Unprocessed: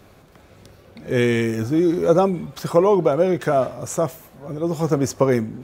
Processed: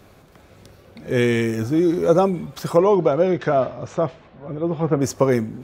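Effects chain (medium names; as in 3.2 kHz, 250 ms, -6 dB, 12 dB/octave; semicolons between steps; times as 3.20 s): 2.77–5.00 s: low-pass 6.8 kHz -> 2.9 kHz 24 dB/octave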